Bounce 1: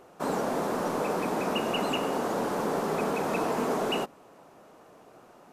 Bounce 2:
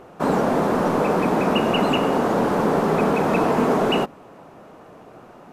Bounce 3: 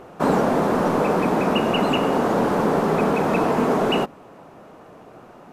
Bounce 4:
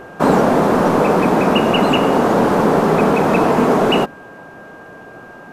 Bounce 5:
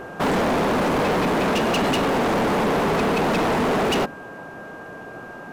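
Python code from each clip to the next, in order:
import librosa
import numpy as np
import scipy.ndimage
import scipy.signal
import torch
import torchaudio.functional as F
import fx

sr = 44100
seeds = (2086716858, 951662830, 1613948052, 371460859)

y1 = fx.bass_treble(x, sr, bass_db=5, treble_db=-8)
y1 = y1 * librosa.db_to_amplitude(8.5)
y2 = fx.rider(y1, sr, range_db=10, speed_s=0.5)
y3 = y2 + 10.0 ** (-46.0 / 20.0) * np.sin(2.0 * np.pi * 1600.0 * np.arange(len(y2)) / sr)
y3 = y3 * librosa.db_to_amplitude(6.0)
y4 = np.clip(y3, -10.0 ** (-19.0 / 20.0), 10.0 ** (-19.0 / 20.0))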